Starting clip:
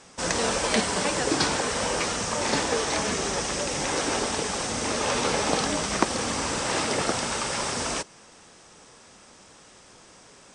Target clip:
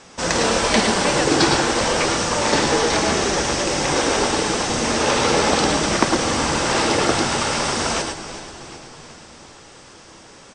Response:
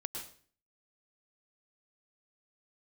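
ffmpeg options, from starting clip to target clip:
-filter_complex "[0:a]asplit=2[s0][s1];[s1]volume=5.01,asoftclip=hard,volume=0.2,volume=0.562[s2];[s0][s2]amix=inputs=2:normalize=0,asettb=1/sr,asplit=3[s3][s4][s5];[s3]atrim=end=2.844[s6];[s4]atrim=start=2.84:end=4.57,asetpts=PTS-STARTPTS,afade=t=in:d=0.004:c=qsin,afade=t=out:st=1.726:d=0.004:c=qsin,aeval=exprs='0.335*(cos(1*acos(clip(val(0)/0.335,-1,1)))-cos(1*PI/2))+0.00668*(cos(4*acos(clip(val(0)/0.335,-1,1)))-cos(4*PI/2))':c=same[s7];[s5]atrim=start=4.566[s8];[s6][s7]acrossfade=d=0.004:c1=hsin:c2=qsin[s9];[s9][s8]acrossfade=d=0.004:c1=qsin:c2=hsin,lowpass=7300,asplit=7[s10][s11][s12][s13][s14][s15][s16];[s11]adelay=379,afreqshift=-80,volume=0.224[s17];[s12]adelay=758,afreqshift=-160,volume=0.127[s18];[s13]adelay=1137,afreqshift=-240,volume=0.0724[s19];[s14]adelay=1516,afreqshift=-320,volume=0.0417[s20];[s15]adelay=1895,afreqshift=-400,volume=0.0237[s21];[s16]adelay=2274,afreqshift=-480,volume=0.0135[s22];[s10][s17][s18][s19][s20][s21][s22]amix=inputs=7:normalize=0[s23];[1:a]atrim=start_sample=2205,afade=t=out:st=0.17:d=0.01,atrim=end_sample=7938[s24];[s23][s24]afir=irnorm=-1:irlink=0,volume=1.68"

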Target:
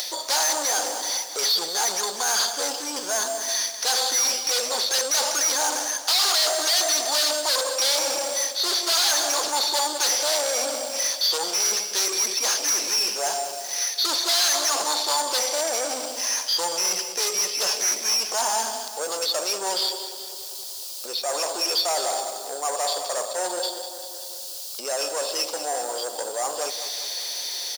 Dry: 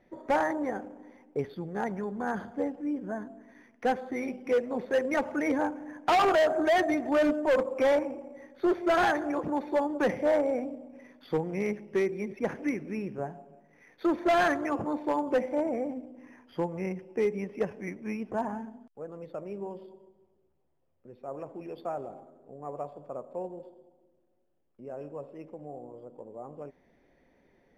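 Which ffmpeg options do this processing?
-filter_complex "[0:a]crystalizer=i=4.5:c=0,areverse,acompressor=threshold=0.0141:ratio=6,areverse,highshelf=f=3000:t=q:w=3:g=14,asplit=2[s0][s1];[s1]highpass=f=720:p=1,volume=28.2,asoftclip=type=tanh:threshold=0.158[s2];[s0][s2]amix=inputs=2:normalize=0,lowpass=f=5000:p=1,volume=0.501,asoftclip=type=tanh:threshold=0.0708,asplit=2[s3][s4];[s4]aecho=0:1:195|390|585|780|975|1170:0.251|0.133|0.0706|0.0374|0.0198|0.0105[s5];[s3][s5]amix=inputs=2:normalize=0,acompressor=mode=upward:threshold=0.02:ratio=2.5,highpass=770,volume=2.24"

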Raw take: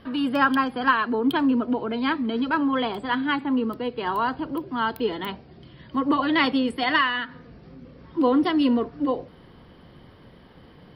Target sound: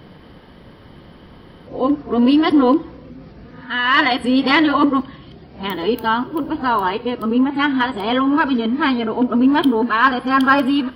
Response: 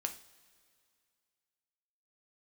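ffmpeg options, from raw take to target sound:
-filter_complex "[0:a]areverse,acontrast=33,asplit=2[s0][s1];[1:a]atrim=start_sample=2205,afade=t=out:st=0.4:d=0.01,atrim=end_sample=18081[s2];[s1][s2]afir=irnorm=-1:irlink=0,volume=0.75[s3];[s0][s3]amix=inputs=2:normalize=0,volume=0.708"

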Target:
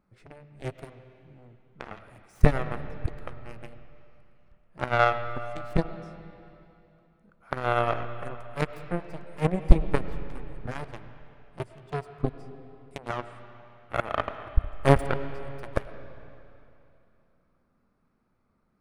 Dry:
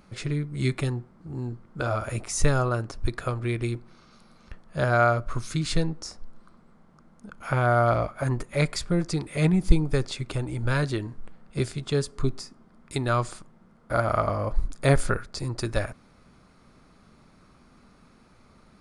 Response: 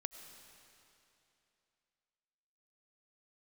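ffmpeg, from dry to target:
-filter_complex "[0:a]bandreject=f=6800:w=8.5,aeval=exprs='0.631*(cos(1*acos(clip(val(0)/0.631,-1,1)))-cos(1*PI/2))+0.1*(cos(7*acos(clip(val(0)/0.631,-1,1)))-cos(7*PI/2))':c=same,asplit=2[s0][s1];[1:a]atrim=start_sample=2205,lowpass=2300[s2];[s1][s2]afir=irnorm=-1:irlink=0,volume=2.24[s3];[s0][s3]amix=inputs=2:normalize=0,volume=0.562"

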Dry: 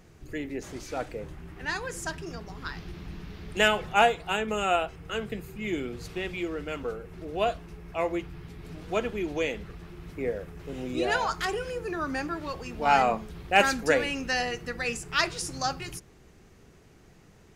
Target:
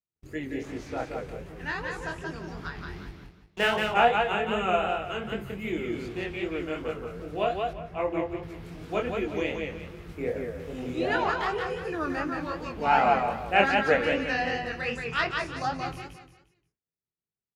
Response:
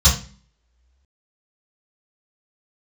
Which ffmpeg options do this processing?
-filter_complex "[0:a]acrossover=split=3700[s0][s1];[s0]highpass=43[s2];[s1]acompressor=threshold=0.00126:ratio=5[s3];[s2][s3]amix=inputs=2:normalize=0,asettb=1/sr,asplit=3[s4][s5][s6];[s4]atrim=end=3.094[s7];[s5]atrim=start=3.09:end=3.74,asetpts=PTS-STARTPTS,afade=t=in:d=0.004:c=qsin,afade=t=out:st=0.646:d=0.004:c=qsin,aeval=exprs='sgn(val(0))*max(abs(val(0))-0.0188,0)':c=same[s8];[s6]atrim=start=3.736[s9];[s7][s8]acrossfade=d=0.004:c1=hsin:c2=qsin[s10];[s10][s9]acrossfade=d=0.004:c1=qsin:c2=hsin,agate=range=0.00501:threshold=0.00398:ratio=16:detection=peak,aecho=1:1:176|352|528|704:0.631|0.208|0.0687|0.0227,flanger=delay=19:depth=6.7:speed=2.6,asettb=1/sr,asplit=3[s11][s12][s13];[s11]atrim=end=7.734[s14];[s12]atrim=start=7.73:end=8.43,asetpts=PTS-STARTPTS,afade=t=in:d=0.004:c=qsin,afade=t=out:st=0.696:d=0.004:c=qsin,highshelf=f=3700:g=-10.5[s15];[s13]atrim=start=8.426[s16];[s14][s15]acrossfade=d=0.004:c1=hsin:c2=qsin[s17];[s17][s16]acrossfade=d=0.004:c1=qsin:c2=hsin,volume=1.33"

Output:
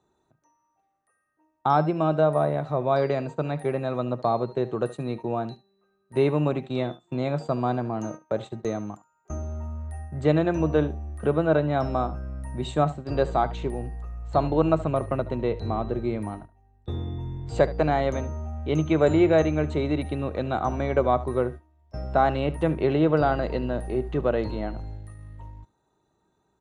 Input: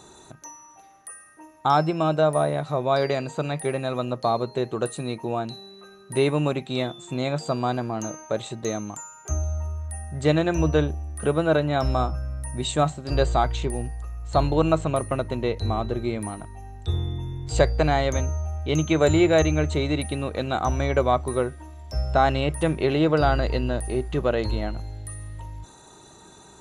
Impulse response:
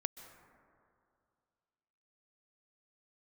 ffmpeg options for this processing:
-filter_complex "[0:a]lowpass=f=1400:p=1,agate=range=0.1:threshold=0.0178:ratio=16:detection=peak,acrossover=split=130[s0][s1];[s0]asoftclip=type=hard:threshold=0.0224[s2];[s1]aecho=1:1:73:0.133[s3];[s2][s3]amix=inputs=2:normalize=0"

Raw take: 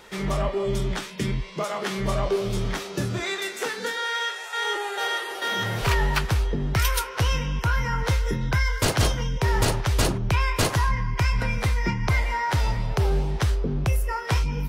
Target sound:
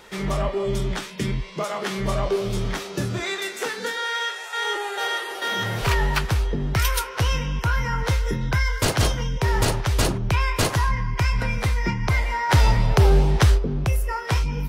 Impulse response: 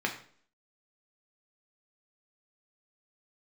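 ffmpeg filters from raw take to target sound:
-filter_complex "[0:a]asplit=3[s0][s1][s2];[s0]afade=t=out:st=12.49:d=0.02[s3];[s1]acontrast=57,afade=t=in:st=12.49:d=0.02,afade=t=out:st=13.57:d=0.02[s4];[s2]afade=t=in:st=13.57:d=0.02[s5];[s3][s4][s5]amix=inputs=3:normalize=0,volume=1.12"

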